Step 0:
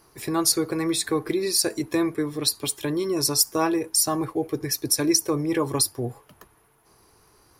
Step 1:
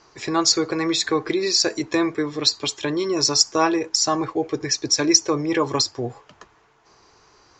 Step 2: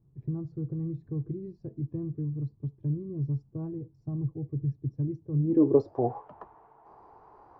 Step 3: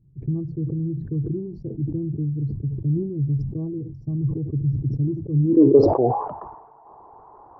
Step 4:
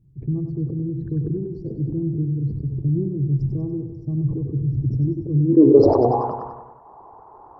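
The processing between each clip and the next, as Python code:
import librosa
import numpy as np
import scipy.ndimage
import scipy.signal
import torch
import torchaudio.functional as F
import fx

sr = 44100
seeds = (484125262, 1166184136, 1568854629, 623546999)

y1 = scipy.signal.sosfilt(scipy.signal.butter(16, 7300.0, 'lowpass', fs=sr, output='sos'), x)
y1 = fx.low_shelf(y1, sr, hz=360.0, db=-8.5)
y1 = y1 * 10.0 ** (6.5 / 20.0)
y2 = fx.dynamic_eq(y1, sr, hz=2100.0, q=1.0, threshold_db=-37.0, ratio=4.0, max_db=-5)
y2 = fx.filter_sweep_lowpass(y2, sr, from_hz=140.0, to_hz=850.0, start_s=5.32, end_s=6.03, q=3.3)
y2 = y2 * 10.0 ** (-2.5 / 20.0)
y3 = fx.envelope_sharpen(y2, sr, power=1.5)
y3 = fx.sustainer(y3, sr, db_per_s=61.0)
y3 = y3 * 10.0 ** (7.0 / 20.0)
y4 = fx.echo_feedback(y3, sr, ms=96, feedback_pct=56, wet_db=-7.5)
y4 = y4 * 10.0 ** (1.0 / 20.0)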